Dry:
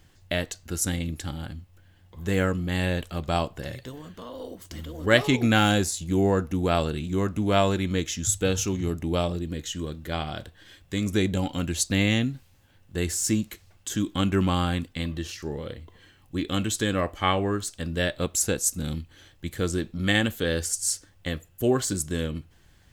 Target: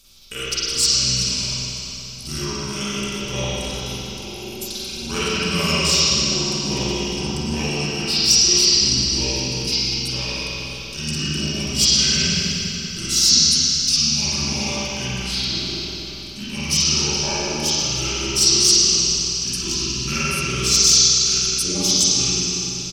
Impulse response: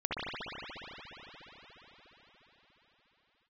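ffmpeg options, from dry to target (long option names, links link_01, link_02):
-filter_complex "[0:a]aecho=1:1:3.9:0.45,asplit=2[link_01][link_02];[link_02]acompressor=threshold=-30dB:ratio=6,volume=3dB[link_03];[link_01][link_03]amix=inputs=2:normalize=0,aexciter=amount=6.4:drive=9.3:freq=3900,aphaser=in_gain=1:out_gain=1:delay=2.5:decay=0.3:speed=1.8:type=sinusoidal,asetrate=33038,aresample=44100,atempo=1.33484[link_04];[1:a]atrim=start_sample=2205,asetrate=66150,aresample=44100[link_05];[link_04][link_05]afir=irnorm=-1:irlink=0,volume=-12dB"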